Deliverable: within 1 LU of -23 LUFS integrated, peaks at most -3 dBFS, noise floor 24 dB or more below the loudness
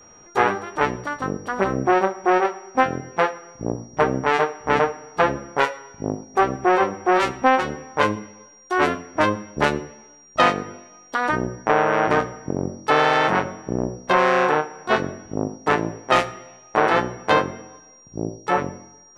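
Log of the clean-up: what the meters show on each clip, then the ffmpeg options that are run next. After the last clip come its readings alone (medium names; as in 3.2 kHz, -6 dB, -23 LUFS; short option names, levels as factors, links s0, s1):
steady tone 5.7 kHz; tone level -48 dBFS; loudness -22.0 LUFS; peak level -3.5 dBFS; loudness target -23.0 LUFS
-> -af "bandreject=f=5700:w=30"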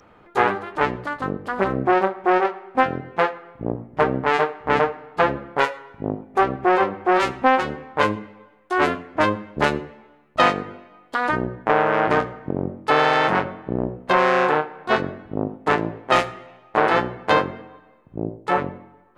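steady tone not found; loudness -22.0 LUFS; peak level -3.5 dBFS; loudness target -23.0 LUFS
-> -af "volume=0.891"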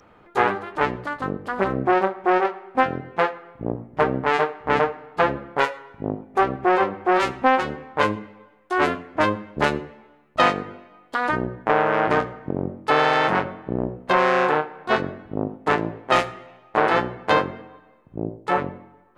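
loudness -23.0 LUFS; peak level -4.5 dBFS; noise floor -54 dBFS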